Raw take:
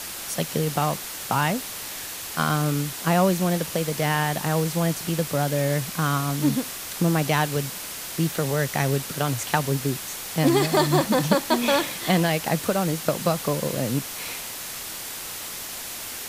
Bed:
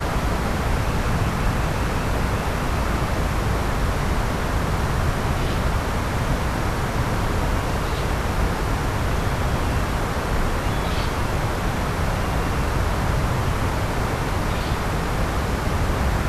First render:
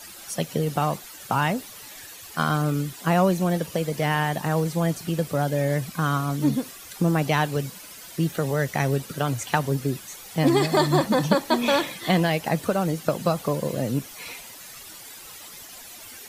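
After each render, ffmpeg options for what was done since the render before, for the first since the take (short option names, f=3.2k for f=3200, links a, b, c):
-af "afftdn=nr=12:nf=-35"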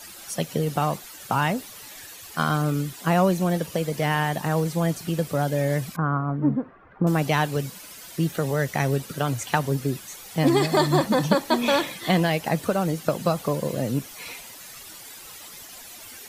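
-filter_complex "[0:a]asettb=1/sr,asplit=3[a][b][c];[a]atrim=end=5.964[d];[b]atrim=start=5.96:end=7.07,asetpts=PTS-STARTPTS,afade=t=in:d=0.004:c=qsin,afade=t=out:st=1.106:d=0.004:c=qsin,lowpass=f=1.5k:w=0.5412,lowpass=f=1.5k:w=1.3066[e];[c]atrim=start=7.066[f];[d][e]acrossfade=d=0.004:c1=hsin:c2=qsin[g];[g][f]acrossfade=d=0.004:c1=qsin:c2=hsin"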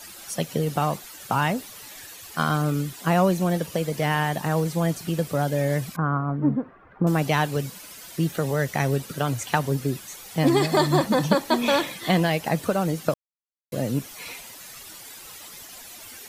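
-filter_complex "[0:a]asplit=3[a][b][c];[a]atrim=end=13.14,asetpts=PTS-STARTPTS,afade=t=out:st=13.136:d=0.004:c=hsin[d];[b]atrim=start=13.14:end=13.72,asetpts=PTS-STARTPTS,volume=0[e];[c]atrim=start=13.72,asetpts=PTS-STARTPTS,afade=t=in:d=0.004:c=hsin[f];[d][e][f]concat=n=3:v=0:a=1"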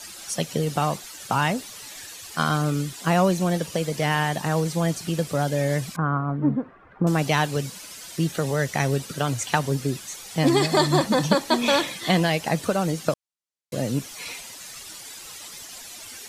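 -af "lowpass=6.9k,aemphasis=mode=production:type=50kf"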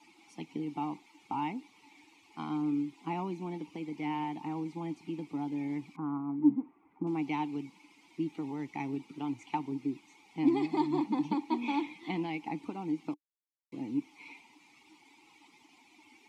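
-filter_complex "[0:a]asplit=3[a][b][c];[a]bandpass=f=300:t=q:w=8,volume=0dB[d];[b]bandpass=f=870:t=q:w=8,volume=-6dB[e];[c]bandpass=f=2.24k:t=q:w=8,volume=-9dB[f];[d][e][f]amix=inputs=3:normalize=0"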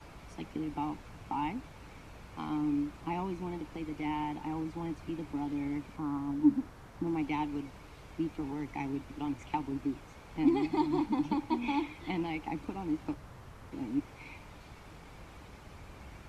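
-filter_complex "[1:a]volume=-28.5dB[a];[0:a][a]amix=inputs=2:normalize=0"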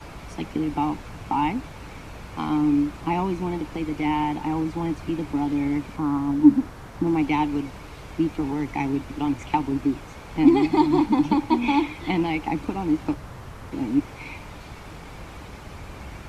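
-af "volume=11dB"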